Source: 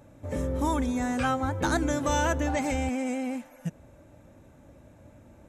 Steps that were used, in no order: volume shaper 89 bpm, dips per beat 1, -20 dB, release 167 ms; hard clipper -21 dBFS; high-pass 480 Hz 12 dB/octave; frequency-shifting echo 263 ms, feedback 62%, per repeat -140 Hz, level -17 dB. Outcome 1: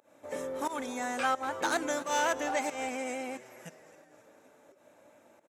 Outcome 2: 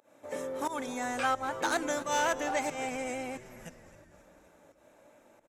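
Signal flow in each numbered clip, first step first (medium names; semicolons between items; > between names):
hard clipper > volume shaper > frequency-shifting echo > high-pass; volume shaper > hard clipper > high-pass > frequency-shifting echo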